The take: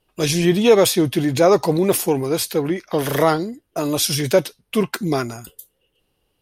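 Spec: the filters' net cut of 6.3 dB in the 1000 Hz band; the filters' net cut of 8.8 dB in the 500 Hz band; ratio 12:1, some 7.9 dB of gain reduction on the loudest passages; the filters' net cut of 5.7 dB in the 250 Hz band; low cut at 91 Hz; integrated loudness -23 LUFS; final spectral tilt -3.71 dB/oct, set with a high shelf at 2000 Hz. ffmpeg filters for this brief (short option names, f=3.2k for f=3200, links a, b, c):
-af "highpass=91,equalizer=f=250:t=o:g=-4.5,equalizer=f=500:t=o:g=-8.5,equalizer=f=1k:t=o:g=-6,highshelf=f=2k:g=3,acompressor=threshold=-22dB:ratio=12,volume=4dB"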